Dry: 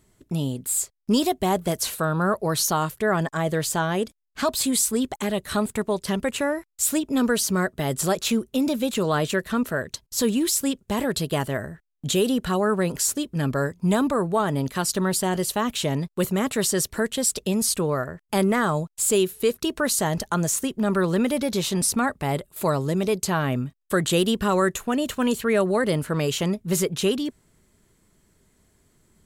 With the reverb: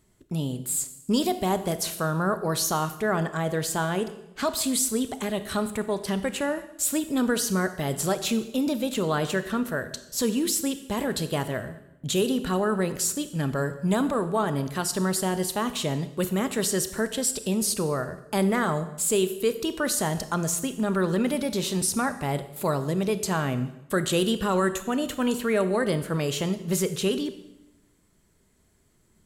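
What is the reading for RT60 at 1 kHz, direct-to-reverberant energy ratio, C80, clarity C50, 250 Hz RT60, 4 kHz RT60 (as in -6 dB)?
0.85 s, 11.0 dB, 14.5 dB, 12.5 dB, 1.1 s, 0.85 s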